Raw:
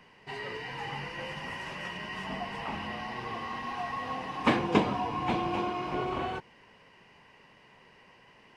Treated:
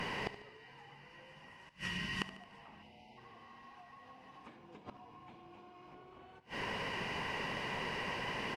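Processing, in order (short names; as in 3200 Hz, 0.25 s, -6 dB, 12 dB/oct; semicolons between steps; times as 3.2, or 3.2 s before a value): 1.69–2.22 passive tone stack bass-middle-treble 6-0-2; in parallel at -7 dB: sine folder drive 3 dB, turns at -9 dBFS; on the sum: compressor 12:1, threshold -36 dBFS, peak gain reduction 23.5 dB; flipped gate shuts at -33 dBFS, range -29 dB; 2.83–3.18 spectral delete 950–2000 Hz; on a send: feedback echo 73 ms, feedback 52%, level -14.5 dB; on the sum: gain +12 dB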